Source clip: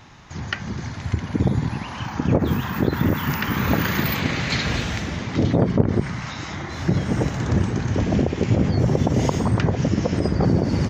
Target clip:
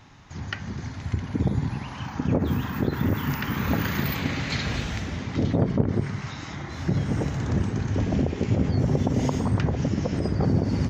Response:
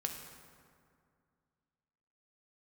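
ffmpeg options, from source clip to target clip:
-filter_complex "[0:a]asplit=2[s0][s1];[1:a]atrim=start_sample=2205,asetrate=74970,aresample=44100,lowshelf=f=240:g=11[s2];[s1][s2]afir=irnorm=-1:irlink=0,volume=0.422[s3];[s0][s3]amix=inputs=2:normalize=0,volume=0.422"

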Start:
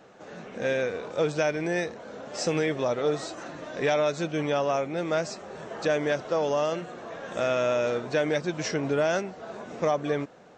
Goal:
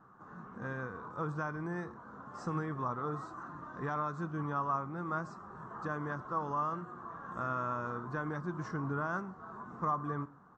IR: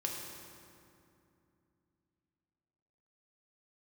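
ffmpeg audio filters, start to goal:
-filter_complex "[0:a]firequalizer=gain_entry='entry(130,0);entry(570,-19);entry(1100,7);entry(2300,-26);entry(8400,-20)':delay=0.05:min_phase=1,asplit=2[s0][s1];[1:a]atrim=start_sample=2205,afade=t=out:st=0.19:d=0.01,atrim=end_sample=8820[s2];[s1][s2]afir=irnorm=-1:irlink=0,volume=0.2[s3];[s0][s3]amix=inputs=2:normalize=0,volume=0.668"

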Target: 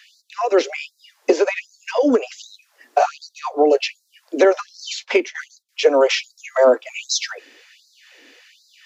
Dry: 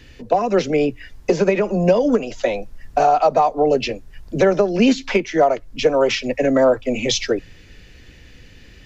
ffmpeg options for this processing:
-filter_complex "[0:a]asettb=1/sr,asplit=3[s0][s1][s2];[s0]atrim=end=4.444[s3];[s1]atrim=start=4.44:end=5.69,asetpts=PTS-STARTPTS,afade=t=in:d=0.004:c=qsin,afade=t=out:st=1.246:d=0.004:c=qsin,agate=range=0.141:threshold=0.0562:ratio=16:detection=peak[s4];[s2]atrim=start=5.686[s5];[s3][s4]acrossfade=d=0.004:c1=hsin:c2=qsin[s6];[s6][s5]acrossfade=d=0.004:c1=qsin:c2=hsin,afftfilt=real='re*gte(b*sr/1024,230*pow(3900/230,0.5+0.5*sin(2*PI*1.3*pts/sr)))':imag='im*gte(b*sr/1024,230*pow(3900/230,0.5+0.5*sin(2*PI*1.3*pts/sr)))':win_size=1024:overlap=0.75,volume=1.26"

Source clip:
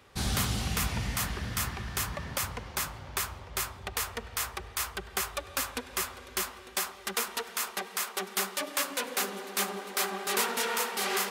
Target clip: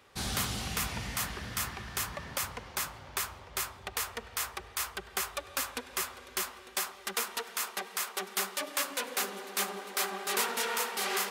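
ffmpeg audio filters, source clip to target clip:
-af "lowshelf=f=210:g=-7,volume=0.841"

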